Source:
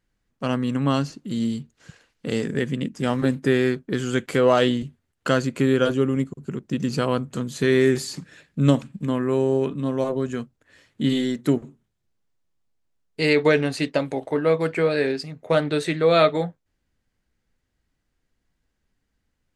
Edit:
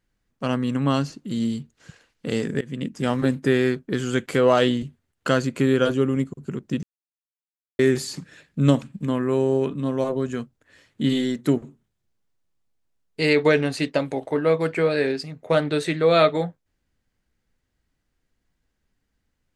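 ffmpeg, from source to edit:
ffmpeg -i in.wav -filter_complex "[0:a]asplit=4[link_01][link_02][link_03][link_04];[link_01]atrim=end=2.61,asetpts=PTS-STARTPTS,afade=type=out:start_time=2.606:duration=0.004:curve=hsin:silence=0.0707946[link_05];[link_02]atrim=start=2.61:end=6.83,asetpts=PTS-STARTPTS,afade=type=in:duration=0.36:curve=qsin:silence=0.0707946,afade=type=out:start_time=4.216:duration=0.004:curve=hsin[link_06];[link_03]atrim=start=6.83:end=7.79,asetpts=PTS-STARTPTS,volume=0[link_07];[link_04]atrim=start=7.79,asetpts=PTS-STARTPTS,afade=type=in:duration=0.004:curve=hsin[link_08];[link_05][link_06][link_07][link_08]concat=n=4:v=0:a=1" out.wav

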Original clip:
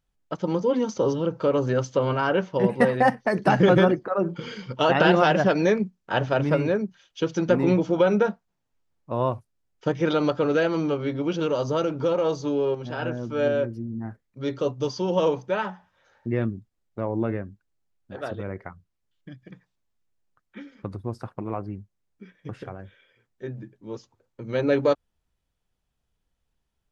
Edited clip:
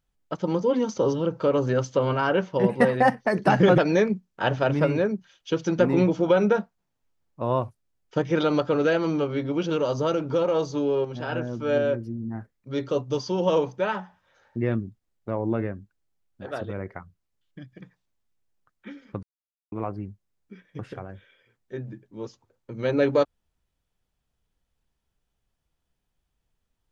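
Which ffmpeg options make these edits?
ffmpeg -i in.wav -filter_complex "[0:a]asplit=4[link_01][link_02][link_03][link_04];[link_01]atrim=end=3.782[link_05];[link_02]atrim=start=5.478:end=20.93,asetpts=PTS-STARTPTS,afade=type=out:start_time=15.448:duration=0.004:curve=hsin[link_06];[link_03]atrim=start=20.93:end=21.42,asetpts=PTS-STARTPTS,volume=0[link_07];[link_04]atrim=start=21.42,asetpts=PTS-STARTPTS,afade=type=in:duration=0.004:curve=hsin[link_08];[link_06][link_07][link_08]concat=n=3:v=0:a=1[link_09];[link_05][link_09]acrossfade=duration=0.004:curve1=hsin:curve2=hsin" out.wav

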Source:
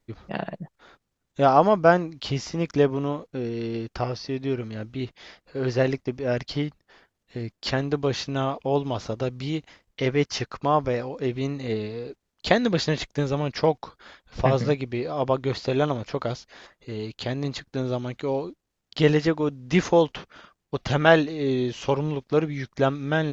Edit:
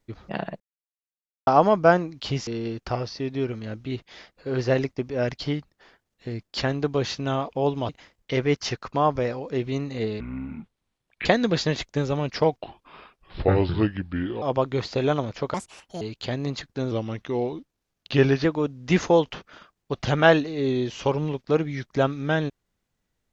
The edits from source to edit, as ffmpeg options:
ffmpeg -i in.wav -filter_complex "[0:a]asplit=13[link_01][link_02][link_03][link_04][link_05][link_06][link_07][link_08][link_09][link_10][link_11][link_12][link_13];[link_01]atrim=end=0.6,asetpts=PTS-STARTPTS,afade=type=out:start_time=0.596:duration=0.004:curve=hsin[link_14];[link_02]atrim=start=0.6:end=1.47,asetpts=PTS-STARTPTS,volume=0[link_15];[link_03]atrim=start=1.47:end=2.472,asetpts=PTS-STARTPTS,afade=type=in:duration=0.004:curve=hsin[link_16];[link_04]atrim=start=3.558:end=8.982[link_17];[link_05]atrim=start=9.578:end=11.894[link_18];[link_06]atrim=start=11.89:end=12.47,asetpts=PTS-STARTPTS,asetrate=24255,aresample=44100,atrim=end_sample=46505,asetpts=PTS-STARTPTS[link_19];[link_07]atrim=start=12.466:end=13.804[link_20];[link_08]atrim=start=13.8:end=15.14,asetpts=PTS-STARTPTS,asetrate=32193,aresample=44100[link_21];[link_09]atrim=start=15.136:end=16.264[link_22];[link_10]atrim=start=16.26:end=16.99,asetpts=PTS-STARTPTS,asetrate=68355,aresample=44100[link_23];[link_11]atrim=start=16.986:end=17.894[link_24];[link_12]atrim=start=17.89:end=19.27,asetpts=PTS-STARTPTS,asetrate=39690,aresample=44100[link_25];[link_13]atrim=start=19.266[link_26];[link_14][link_15][link_16]concat=n=3:v=0:a=1[link_27];[link_27][link_17]acrossfade=duration=0.004:curve1=hsin:curve2=hsin[link_28];[link_28][link_18]acrossfade=duration=0.004:curve1=hsin:curve2=hsin[link_29];[link_29][link_19]acrossfade=duration=0.004:curve1=hsin:curve2=hsin[link_30];[link_30][link_20]acrossfade=duration=0.004:curve1=hsin:curve2=hsin[link_31];[link_31][link_21]acrossfade=duration=0.004:curve1=hsin:curve2=hsin[link_32];[link_32][link_22]acrossfade=duration=0.004:curve1=hsin:curve2=hsin[link_33];[link_33][link_23]acrossfade=duration=0.004:curve1=hsin:curve2=hsin[link_34];[link_34][link_24]acrossfade=duration=0.004:curve1=hsin:curve2=hsin[link_35];[link_35][link_25]acrossfade=duration=0.004:curve1=hsin:curve2=hsin[link_36];[link_36][link_26]acrossfade=duration=0.004:curve1=hsin:curve2=hsin" out.wav

